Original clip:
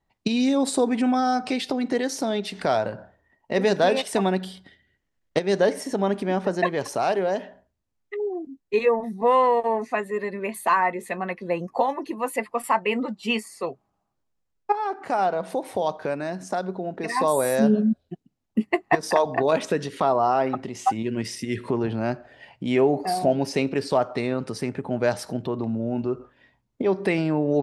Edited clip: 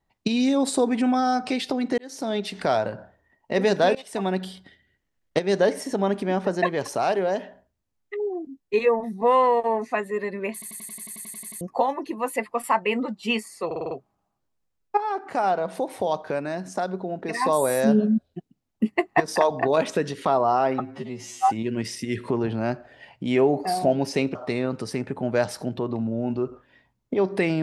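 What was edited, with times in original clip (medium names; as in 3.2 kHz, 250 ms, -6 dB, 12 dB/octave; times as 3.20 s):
1.98–2.36 s: fade in
3.95–4.43 s: fade in, from -20 dB
10.53 s: stutter in place 0.09 s, 12 plays
13.66 s: stutter 0.05 s, 6 plays
20.55–20.90 s: stretch 2×
23.75–24.03 s: delete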